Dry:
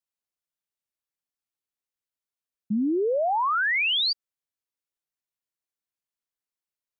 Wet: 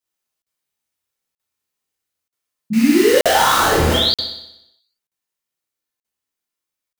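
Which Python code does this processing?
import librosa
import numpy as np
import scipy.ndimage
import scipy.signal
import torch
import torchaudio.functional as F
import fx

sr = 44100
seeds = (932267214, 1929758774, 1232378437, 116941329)

p1 = fx.rider(x, sr, range_db=10, speed_s=0.5)
p2 = fx.sample_hold(p1, sr, seeds[0], rate_hz=2400.0, jitter_pct=20, at=(2.73, 3.94))
p3 = p2 + fx.room_flutter(p2, sr, wall_m=10.5, rt60_s=0.83, dry=0)
p4 = fx.rev_gated(p3, sr, seeds[1], gate_ms=80, shape='flat', drr_db=-5.5)
p5 = fx.buffer_crackle(p4, sr, first_s=0.42, period_s=0.93, block=2048, kind='zero')
y = F.gain(torch.from_numpy(p5), 2.0).numpy()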